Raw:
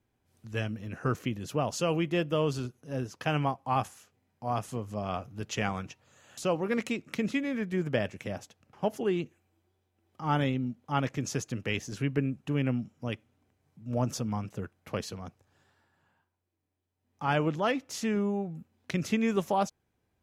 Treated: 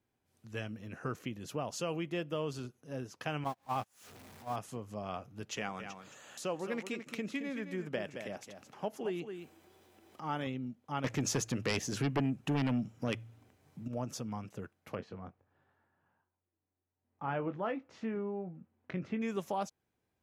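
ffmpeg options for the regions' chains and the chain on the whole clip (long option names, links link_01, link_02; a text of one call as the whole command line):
ffmpeg -i in.wav -filter_complex "[0:a]asettb=1/sr,asplit=3[link_01][link_02][link_03];[link_01]atrim=end=3.444[link_04];[link_02]atrim=start=3.44:end=4.56,asetpts=PTS-STARTPTS,afade=type=in:duration=0.004:curve=qsin,afade=type=out:start_time=1.116:duration=0.004:curve=qsin,aeval=exprs='val(0)+0.5*0.0168*sgn(val(0))':channel_layout=same,agate=range=-36dB:threshold=-29dB:ratio=16:release=100:detection=peak,acompressor=mode=upward:threshold=-29dB:ratio=2.5:attack=3.2:release=140:knee=2.83:detection=peak[link_05];[link_03]atrim=start=4.556[link_06];[link_04][link_05]acrossfade=duration=0.004:curve1=hsin:curve2=qsin[link_07];[link_07][link_06]acrossfade=duration=0.004:curve1=qsin:curve2=hsin,asettb=1/sr,asplit=3[link_08][link_09][link_10];[link_08]atrim=end=5.574[link_11];[link_09]atrim=start=5.57:end=10.47,asetpts=PTS-STARTPTS,afade=type=in:duration=0.004:curve=qsin,afade=type=out:start_time=4.896:duration=0.004:curve=qsin,equalizer=frequency=87:width=1.2:gain=-9,acompressor=mode=upward:threshold=-40dB:ratio=2.5:attack=3.2:release=140:knee=2.83:detection=peak,aecho=1:1:219:0.316,atrim=end_sample=216090[link_12];[link_10]atrim=start=10.466[link_13];[link_11][link_12]acrossfade=duration=0.004:curve1=hsin:curve2=qsin[link_14];[link_14][link_13]acrossfade=duration=0.004:curve1=qsin:curve2=hsin,asettb=1/sr,asplit=3[link_15][link_16][link_17];[link_15]atrim=end=11.044[link_18];[link_16]atrim=start=11.04:end=13.88,asetpts=PTS-STARTPTS,afade=type=in:duration=0.004:curve=qsin,afade=type=out:start_time=2.836:duration=0.004:curve=qsin,bandreject=frequency=56.97:width_type=h:width=4,bandreject=frequency=113.94:width_type=h:width=4,aeval=exprs='0.188*sin(PI/2*2.51*val(0)/0.188)':channel_layout=same[link_19];[link_17]atrim=start=13.876[link_20];[link_18][link_19]acrossfade=duration=0.004:curve1=hsin:curve2=qsin[link_21];[link_21][link_20]acrossfade=duration=0.004:curve1=qsin:curve2=hsin,asettb=1/sr,asplit=3[link_22][link_23][link_24];[link_22]atrim=end=14.954[link_25];[link_23]atrim=start=14.95:end=19.22,asetpts=PTS-STARTPTS,afade=type=in:duration=0.004:curve=qsin,afade=type=out:start_time=4.266:duration=0.004:curve=qsin,lowpass=1800,asplit=2[link_26][link_27];[link_27]adelay=22,volume=-10dB[link_28];[link_26][link_28]amix=inputs=2:normalize=0,atrim=end_sample=188307[link_29];[link_24]atrim=start=19.216[link_30];[link_25][link_29]acrossfade=duration=0.004:curve1=hsin:curve2=qsin[link_31];[link_31][link_30]acrossfade=duration=0.004:curve1=qsin:curve2=hsin,acompressor=threshold=-33dB:ratio=1.5,lowshelf=frequency=95:gain=-8.5,volume=-4dB" out.wav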